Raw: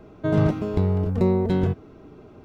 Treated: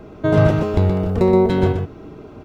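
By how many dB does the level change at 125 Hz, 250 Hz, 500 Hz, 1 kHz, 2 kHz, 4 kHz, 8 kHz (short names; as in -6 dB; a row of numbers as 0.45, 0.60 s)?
+4.5 dB, +4.5 dB, +8.0 dB, +8.5 dB, +9.0 dB, +8.5 dB, n/a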